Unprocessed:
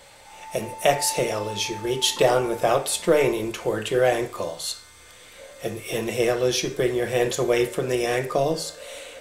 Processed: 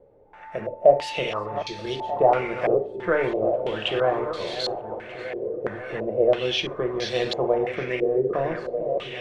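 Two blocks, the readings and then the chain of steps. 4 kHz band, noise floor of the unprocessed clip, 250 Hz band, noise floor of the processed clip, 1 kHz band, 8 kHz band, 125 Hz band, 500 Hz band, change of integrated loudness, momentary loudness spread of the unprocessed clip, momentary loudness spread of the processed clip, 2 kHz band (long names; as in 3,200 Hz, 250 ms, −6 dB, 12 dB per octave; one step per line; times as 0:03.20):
−3.0 dB, −48 dBFS, −2.5 dB, −42 dBFS, +0.5 dB, below −15 dB, −4.0 dB, 0.0 dB, −1.0 dB, 12 LU, 11 LU, −2.0 dB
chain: feedback delay that plays each chunk backwards 619 ms, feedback 58%, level −9 dB
feedback delay with all-pass diffusion 1,399 ms, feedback 43%, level −15.5 dB
low-pass on a step sequencer 3 Hz 430–4,200 Hz
level −5 dB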